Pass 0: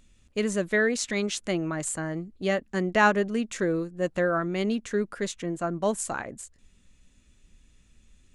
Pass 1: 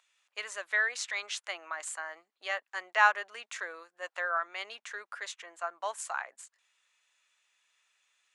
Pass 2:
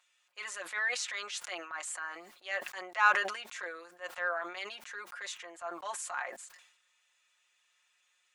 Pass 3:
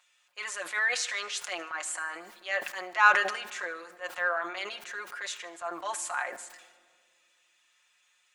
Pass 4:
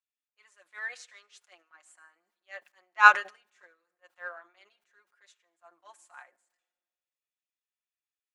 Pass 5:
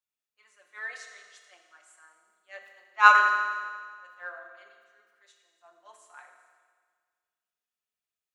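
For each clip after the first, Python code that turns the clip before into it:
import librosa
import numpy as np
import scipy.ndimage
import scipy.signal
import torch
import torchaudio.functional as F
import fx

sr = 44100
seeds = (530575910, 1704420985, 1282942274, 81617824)

y1 = scipy.signal.sosfilt(scipy.signal.butter(4, 840.0, 'highpass', fs=sr, output='sos'), x)
y1 = fx.high_shelf(y1, sr, hz=5700.0, db=-11.5)
y2 = y1 + 0.79 * np.pad(y1, (int(5.6 * sr / 1000.0), 0))[:len(y1)]
y2 = fx.transient(y2, sr, attack_db=-8, sustain_db=0)
y2 = fx.sustainer(y2, sr, db_per_s=72.0)
y2 = F.gain(torch.from_numpy(y2), -1.5).numpy()
y3 = fx.echo_feedback(y2, sr, ms=77, feedback_pct=52, wet_db=-20.0)
y3 = fx.room_shoebox(y3, sr, seeds[0], volume_m3=3300.0, walls='mixed', distance_m=0.38)
y3 = F.gain(torch.from_numpy(y3), 4.5).numpy()
y4 = fx.upward_expand(y3, sr, threshold_db=-41.0, expansion=2.5)
y4 = F.gain(torch.from_numpy(y4), 5.5).numpy()
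y5 = fx.rev_fdn(y4, sr, rt60_s=1.7, lf_ratio=1.1, hf_ratio=0.95, size_ms=14.0, drr_db=2.5)
y5 = F.gain(torch.from_numpy(y5), -1.0).numpy()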